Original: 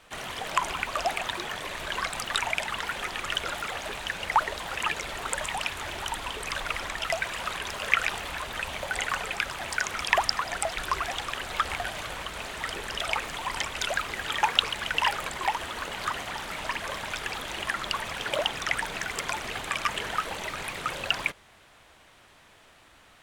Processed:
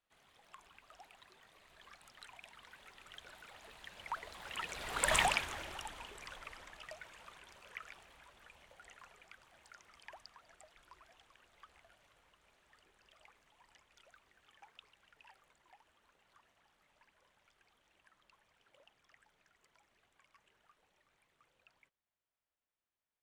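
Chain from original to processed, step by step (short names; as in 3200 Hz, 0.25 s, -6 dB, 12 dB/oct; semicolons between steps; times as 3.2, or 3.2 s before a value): Doppler pass-by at 5.18, 19 m/s, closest 1.7 m; gain +3.5 dB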